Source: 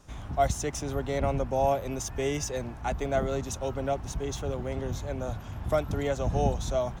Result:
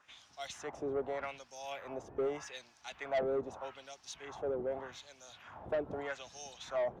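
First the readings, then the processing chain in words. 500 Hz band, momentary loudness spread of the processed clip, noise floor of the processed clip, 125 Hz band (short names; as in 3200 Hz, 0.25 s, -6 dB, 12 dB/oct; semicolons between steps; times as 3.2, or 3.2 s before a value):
-7.5 dB, 14 LU, -65 dBFS, -23.5 dB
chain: LFO band-pass sine 0.82 Hz 410–5500 Hz; soft clip -31 dBFS, distortion -11 dB; gain +3 dB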